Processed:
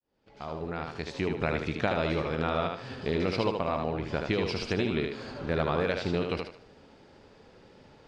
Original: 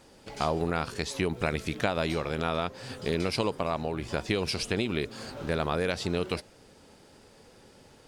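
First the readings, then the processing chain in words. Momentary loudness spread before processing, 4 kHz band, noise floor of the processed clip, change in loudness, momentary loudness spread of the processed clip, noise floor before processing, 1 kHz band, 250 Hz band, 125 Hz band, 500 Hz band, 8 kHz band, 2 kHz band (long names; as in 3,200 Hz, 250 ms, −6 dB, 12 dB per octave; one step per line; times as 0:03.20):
6 LU, −3.5 dB, −57 dBFS, 0.0 dB, 8 LU, −56 dBFS, −0.5 dB, +0.5 dB, 0.0 dB, +0.5 dB, below −10 dB, −0.5 dB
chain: fade in at the beginning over 1.50 s
high-frequency loss of the air 160 metres
on a send: feedback echo with a high-pass in the loop 76 ms, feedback 33%, high-pass 170 Hz, level −4 dB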